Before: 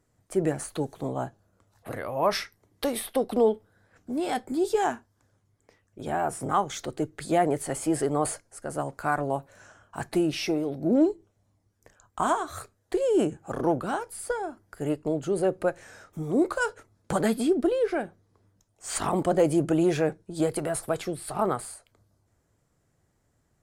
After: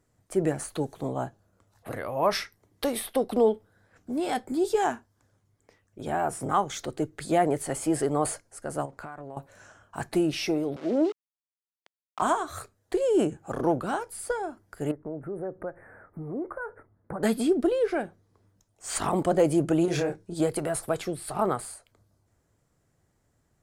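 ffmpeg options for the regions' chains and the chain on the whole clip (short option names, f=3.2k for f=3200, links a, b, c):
-filter_complex "[0:a]asettb=1/sr,asplit=3[a][b][c];[a]atrim=end=8.854[d];[b]atrim=start=8.85:end=9.37,asetpts=PTS-STARTPTS,afade=t=in:d=0.004:c=qsin,afade=t=out:st=0.516:d=0.004:c=qsin,lowpass=f=3.8k:p=1,acompressor=threshold=-36dB:ratio=10:attack=3.2:release=140:knee=1:detection=peak[e];[c]atrim=start=9.366[f];[d][e]acrossfade=d=0.004:c1=hsin:c2=qsin[g];[g][f]acrossfade=d=0.004:c1=qsin:c2=hsin,asettb=1/sr,asplit=3[h][i][j];[h]atrim=end=10.764[k];[i]atrim=start=10.76:end=12.22,asetpts=PTS-STARTPTS,afade=t=in:d=0.004:c=qsin,afade=t=out:st=1.456:d=0.004:c=qsin,aeval=exprs='val(0)*gte(abs(val(0)),0.015)':c=same,highpass=330,lowpass=5.1k[l];[j]atrim=start=12.216[m];[k][l]acrossfade=d=0.004:c1=hsin:c2=qsin[n];[n][m]acrossfade=d=0.004:c1=qsin:c2=hsin,asettb=1/sr,asplit=3[o][p][q];[o]atrim=end=14.914[r];[p]atrim=start=14.91:end=17.23,asetpts=PTS-STARTPTS,afade=t=in:d=0.004:c=qsin,afade=t=out:st=2.316:d=0.004:c=qsin,aemphasis=mode=reproduction:type=75kf,acompressor=threshold=-37dB:ratio=2:attack=3.2:release=140:knee=1:detection=peak,asuperstop=centerf=4600:order=12:qfactor=0.63[s];[q]atrim=start=17.226[t];[r][s]acrossfade=d=0.004:c1=hsin:c2=qsin[u];[u][t]acrossfade=d=0.004:c1=qsin:c2=hsin,asettb=1/sr,asplit=3[v][w][x];[v]atrim=end=19.854[y];[w]atrim=start=19.85:end=20.34,asetpts=PTS-STARTPTS,afade=t=in:d=0.004:c=qsin,afade=t=out:st=0.486:d=0.004:c=qsin,equalizer=f=5.4k:t=o:w=0.9:g=3.5,acompressor=threshold=-24dB:ratio=4:attack=3.2:release=140:knee=1:detection=peak,asplit=2[z][aa];[aa]adelay=29,volume=-4dB[ab];[z][ab]amix=inputs=2:normalize=0,atrim=end_sample=21609[ac];[x]atrim=start=20.336[ad];[y][ac]acrossfade=d=0.004:c1=hsin:c2=qsin[ae];[ae][ad]acrossfade=d=0.004:c1=qsin:c2=hsin"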